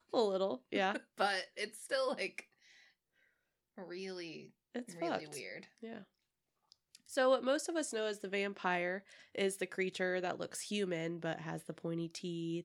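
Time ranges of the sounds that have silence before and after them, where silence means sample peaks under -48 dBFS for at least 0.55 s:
3.78–6.02

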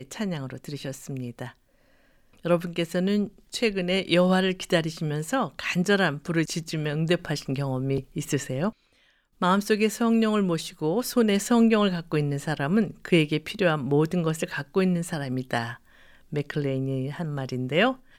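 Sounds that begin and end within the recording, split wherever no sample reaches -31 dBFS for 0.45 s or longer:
2.45–8.7
9.42–15.73

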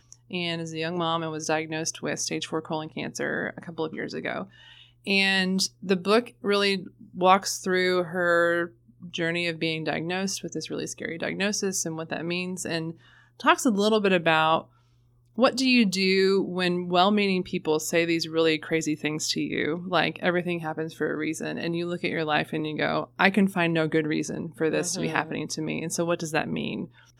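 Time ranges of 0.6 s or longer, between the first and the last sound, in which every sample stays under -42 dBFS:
14.63–15.38

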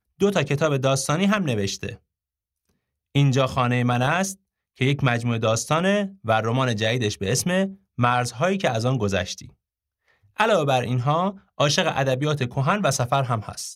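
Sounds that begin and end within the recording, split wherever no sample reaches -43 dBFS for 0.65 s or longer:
3.15–9.49

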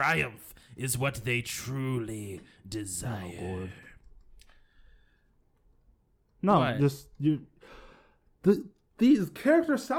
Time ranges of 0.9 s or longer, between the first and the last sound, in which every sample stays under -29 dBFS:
3.65–6.43
7.36–8.46

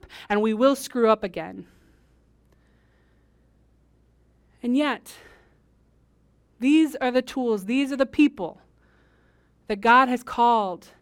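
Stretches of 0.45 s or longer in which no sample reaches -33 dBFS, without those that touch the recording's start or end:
1.61–4.64
5.11–6.62
8.51–9.7

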